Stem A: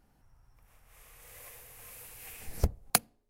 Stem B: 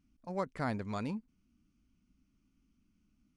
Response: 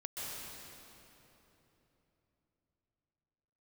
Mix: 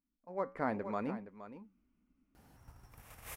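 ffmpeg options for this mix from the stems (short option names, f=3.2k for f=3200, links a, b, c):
-filter_complex "[0:a]agate=range=-7dB:threshold=-59dB:ratio=16:detection=peak,highpass=58,adelay=2350,volume=-2.5dB[a];[1:a]equalizer=f=125:t=o:w=1:g=-6,equalizer=f=250:t=o:w=1:g=5,equalizer=f=500:t=o:w=1:g=8,equalizer=f=1k:t=o:w=1:g=6,equalizer=f=2k:t=o:w=1:g=5,equalizer=f=4k:t=o:w=1:g=-7,equalizer=f=8k:t=o:w=1:g=-9,flanger=delay=5:depth=3.3:regen=-83:speed=1.1:shape=sinusoidal,volume=-17dB,asplit=2[b][c];[c]volume=-13dB,aecho=0:1:469:1[d];[a][b][d]amix=inputs=3:normalize=0,dynaudnorm=f=250:g=3:m=16dB"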